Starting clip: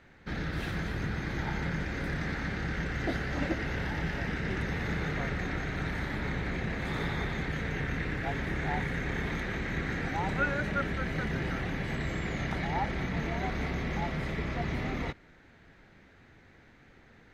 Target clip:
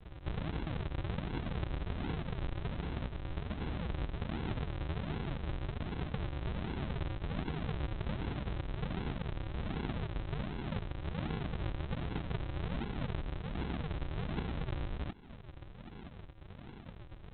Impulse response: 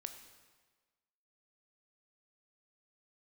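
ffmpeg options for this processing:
-af "acompressor=threshold=-42dB:ratio=16,aresample=8000,acrusher=samples=25:mix=1:aa=0.000001:lfo=1:lforange=25:lforate=1.3,aresample=44100,volume=8.5dB"

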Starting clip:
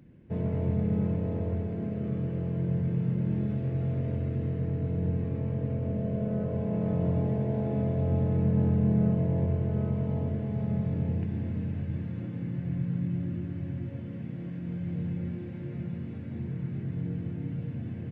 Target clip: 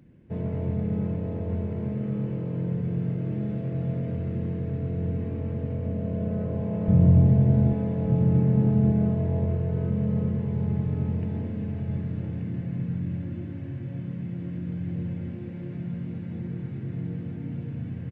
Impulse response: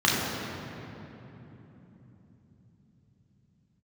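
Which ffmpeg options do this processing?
-filter_complex "[0:a]asettb=1/sr,asplit=3[link_01][link_02][link_03];[link_01]atrim=end=6.884[link_04];[link_02]atrim=start=6.88:end=7.73,asetpts=PTS-STARTPTS,afade=type=in:duration=0.004:curve=qsin,afade=type=out:start_time=0.846:duration=0.004:curve=qsin,bass=frequency=250:gain=13,treble=frequency=4000:gain=3[link_05];[link_03]atrim=start=7.726[link_06];[link_04][link_05]acrossfade=duration=0.004:curve1=hsin:curve2=qsin[link_07];[link_07][link_06]acrossfade=duration=0.004:curve1=qsin:curve2=hsin,asplit=2[link_08][link_09];[link_09]aecho=0:1:1181:0.531[link_10];[link_08][link_10]amix=inputs=2:normalize=0,aresample=22050,aresample=44100"

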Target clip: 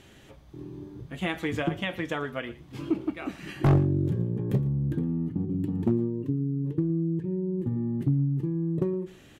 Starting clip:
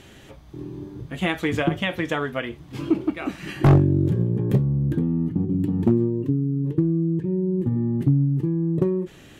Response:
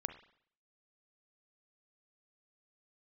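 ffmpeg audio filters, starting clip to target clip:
-af "aecho=1:1:115:0.112,volume=-6dB"

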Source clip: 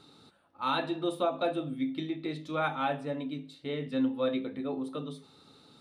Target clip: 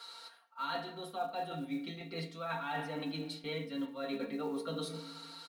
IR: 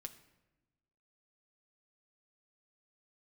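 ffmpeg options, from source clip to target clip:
-filter_complex "[0:a]acrossover=split=630[link_01][link_02];[link_01]agate=range=-34dB:threshold=-53dB:ratio=16:detection=peak[link_03];[link_02]acontrast=22[link_04];[link_03][link_04]amix=inputs=2:normalize=0[link_05];[1:a]atrim=start_sample=2205[link_06];[link_05][link_06]afir=irnorm=-1:irlink=0,areverse,acompressor=threshold=-45dB:ratio=12,areverse,aecho=1:1:4.6:0.94,acrusher=bits=8:mode=log:mix=0:aa=0.000001,asetrate=46746,aresample=44100,volume=7.5dB"

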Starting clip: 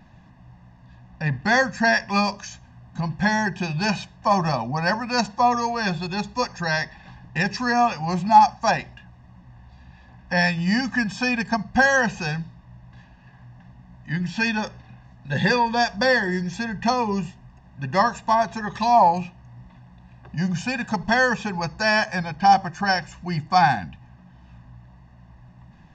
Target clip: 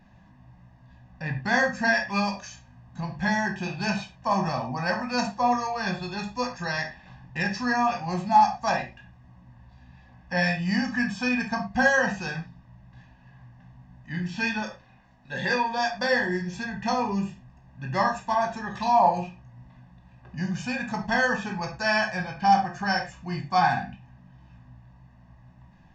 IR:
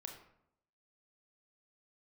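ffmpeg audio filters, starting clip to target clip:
-filter_complex "[0:a]asettb=1/sr,asplit=3[link_01][link_02][link_03];[link_01]atrim=end=14.624[link_04];[link_02]atrim=start=14.62:end=16.13,asetpts=PTS-STARTPTS,afade=type=in:duration=0.004:curve=qsin,afade=type=out:start_time=1.506:duration=0.004:curve=qsin,equalizer=frequency=93:width=0.6:gain=-11[link_05];[link_03]atrim=start=16.126[link_06];[link_04][link_05]acrossfade=duration=0.004:curve1=hsin:curve2=qsin[link_07];[link_07][link_06]acrossfade=duration=0.004:curve1=qsin:curve2=hsin[link_08];[1:a]atrim=start_sample=2205,afade=type=out:start_time=0.25:duration=0.01,atrim=end_sample=11466,asetrate=74970,aresample=44100[link_09];[link_08][link_09]afir=irnorm=-1:irlink=0,volume=4dB"

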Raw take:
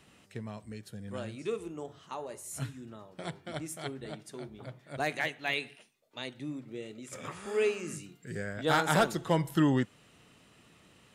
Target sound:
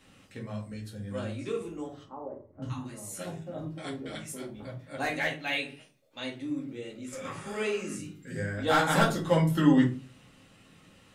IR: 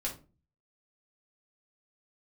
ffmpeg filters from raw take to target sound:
-filter_complex "[0:a]asettb=1/sr,asplit=3[link_01][link_02][link_03];[link_01]atrim=end=2.034[link_04];[link_02]atrim=start=2.03:end=4.41,asetpts=PTS-STARTPTS,afade=type=in:duration=0.004:curve=qsin,afade=type=out:start_time=2.376:duration=0.004:curve=qsin,acrossover=split=1000[link_05][link_06];[link_06]adelay=590[link_07];[link_05][link_07]amix=inputs=2:normalize=0,atrim=end_sample=104958[link_08];[link_03]atrim=start=4.406[link_09];[link_04][link_08]acrossfade=duration=0.004:curve1=hsin:curve2=qsin[link_10];[link_10][link_09]acrossfade=duration=0.004:curve1=qsin:curve2=hsin[link_11];[1:a]atrim=start_sample=2205[link_12];[link_11][link_12]afir=irnorm=-1:irlink=0"

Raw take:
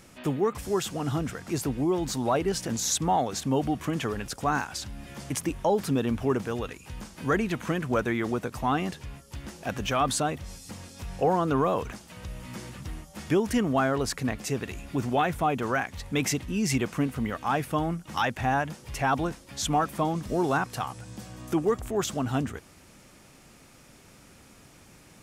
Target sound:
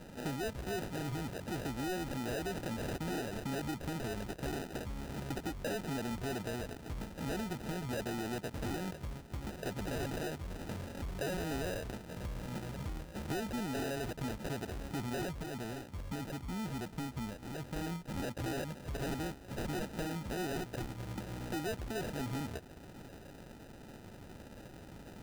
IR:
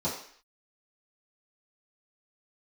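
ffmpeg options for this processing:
-filter_complex "[0:a]asoftclip=type=tanh:threshold=-27dB,acrusher=bits=4:mode=log:mix=0:aa=0.000001,acompressor=threshold=-40dB:ratio=4,asettb=1/sr,asplit=3[link_01][link_02][link_03];[link_01]atrim=end=15.304[link_04];[link_02]atrim=start=15.3:end=17.76,asetpts=PTS-STARTPTS,afade=type=in:duration=0.004:curve=qsin,afade=type=out:start_time=2.456:duration=0.004:curve=qsin,equalizer=frequency=2000:width=0.38:gain=-12[link_05];[link_03]atrim=start=17.756[link_06];[link_04][link_05]acrossfade=duration=0.004:curve1=hsin:curve2=qsin[link_07];[link_07][link_06]acrossfade=duration=0.004:curve1=qsin:curve2=hsin,acrusher=samples=40:mix=1:aa=0.000001,volume=2.5dB"

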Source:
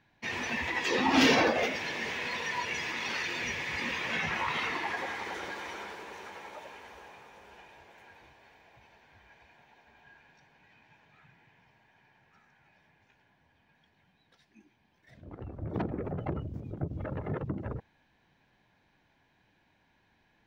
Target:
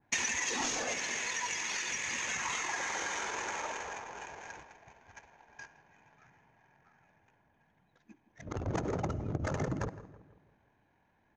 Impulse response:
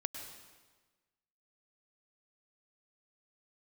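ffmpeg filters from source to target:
-filter_complex "[0:a]agate=range=-6dB:threshold=-58dB:ratio=16:detection=peak,tiltshelf=frequency=760:gain=-5,asplit=2[link_01][link_02];[link_02]aeval=exprs='0.355*sin(PI/2*4.47*val(0)/0.355)':channel_layout=same,volume=-6dB[link_03];[link_01][link_03]amix=inputs=2:normalize=0,adynamicsmooth=sensitivity=5.5:basefreq=1000,lowpass=frequency=6500:width_type=q:width=12,asplit=2[link_04][link_05];[1:a]atrim=start_sample=2205[link_06];[link_05][link_06]afir=irnorm=-1:irlink=0,volume=-13dB[link_07];[link_04][link_07]amix=inputs=2:normalize=0,atempo=1.8,acompressor=threshold=-25dB:ratio=8,asplit=2[link_08][link_09];[link_09]adelay=163,lowpass=frequency=1400:poles=1,volume=-14.5dB,asplit=2[link_10][link_11];[link_11]adelay=163,lowpass=frequency=1400:poles=1,volume=0.51,asplit=2[link_12][link_13];[link_13]adelay=163,lowpass=frequency=1400:poles=1,volume=0.51,asplit=2[link_14][link_15];[link_15]adelay=163,lowpass=frequency=1400:poles=1,volume=0.51,asplit=2[link_16][link_17];[link_17]adelay=163,lowpass=frequency=1400:poles=1,volume=0.51[link_18];[link_08][link_10][link_12][link_14][link_16][link_18]amix=inputs=6:normalize=0,adynamicequalizer=threshold=0.00631:dfrequency=2000:dqfactor=0.7:tfrequency=2000:tqfactor=0.7:attack=5:release=100:ratio=0.375:range=2.5:mode=cutabove:tftype=highshelf,volume=-5dB"

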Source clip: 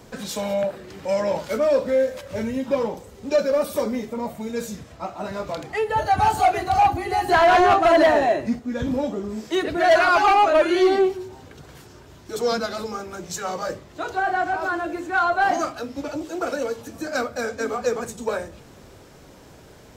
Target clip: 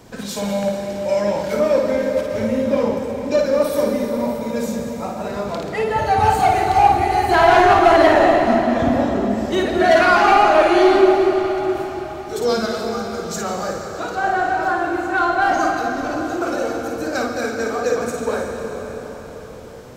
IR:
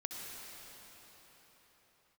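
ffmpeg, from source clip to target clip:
-filter_complex "[0:a]asplit=2[link_01][link_02];[1:a]atrim=start_sample=2205,lowshelf=frequency=370:gain=6,adelay=54[link_03];[link_02][link_03]afir=irnorm=-1:irlink=0,volume=-1dB[link_04];[link_01][link_04]amix=inputs=2:normalize=0,volume=1dB"

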